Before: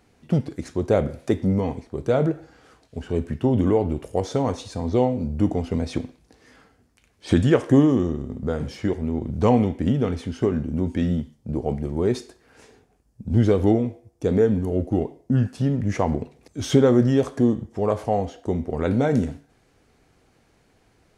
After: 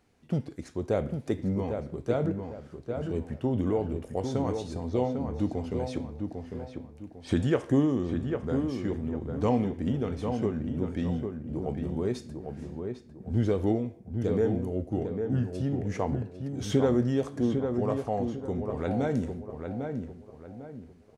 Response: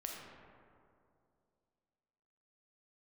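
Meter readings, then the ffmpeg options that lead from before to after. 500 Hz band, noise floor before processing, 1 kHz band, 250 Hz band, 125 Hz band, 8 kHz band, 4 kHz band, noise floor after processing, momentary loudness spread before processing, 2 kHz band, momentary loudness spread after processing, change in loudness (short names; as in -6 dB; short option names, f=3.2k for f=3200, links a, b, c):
-7.0 dB, -62 dBFS, -7.0 dB, -7.0 dB, -7.0 dB, n/a, -7.5 dB, -51 dBFS, 11 LU, -7.5 dB, 12 LU, -7.5 dB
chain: -filter_complex "[0:a]asplit=2[a][b];[b]adelay=800,lowpass=f=2.1k:p=1,volume=-5.5dB,asplit=2[c][d];[d]adelay=800,lowpass=f=2.1k:p=1,volume=0.35,asplit=2[e][f];[f]adelay=800,lowpass=f=2.1k:p=1,volume=0.35,asplit=2[g][h];[h]adelay=800,lowpass=f=2.1k:p=1,volume=0.35[i];[a][c][e][g][i]amix=inputs=5:normalize=0,volume=-8dB"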